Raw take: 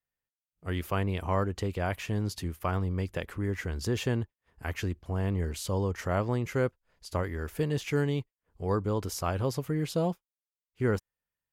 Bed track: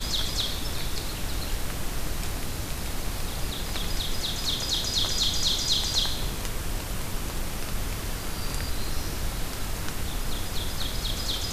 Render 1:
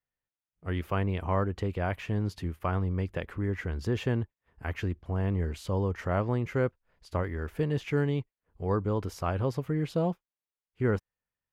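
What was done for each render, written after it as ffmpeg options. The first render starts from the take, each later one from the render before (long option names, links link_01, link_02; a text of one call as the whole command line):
ffmpeg -i in.wav -af "bass=frequency=250:gain=1,treble=frequency=4000:gain=-12" out.wav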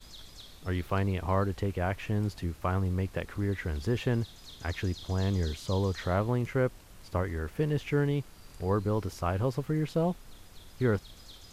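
ffmpeg -i in.wav -i bed.wav -filter_complex "[1:a]volume=-21dB[link_01];[0:a][link_01]amix=inputs=2:normalize=0" out.wav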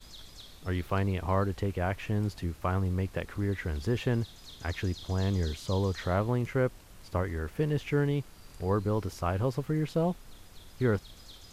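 ffmpeg -i in.wav -af anull out.wav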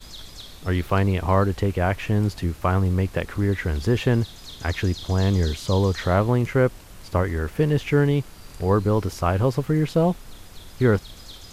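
ffmpeg -i in.wav -af "volume=8.5dB" out.wav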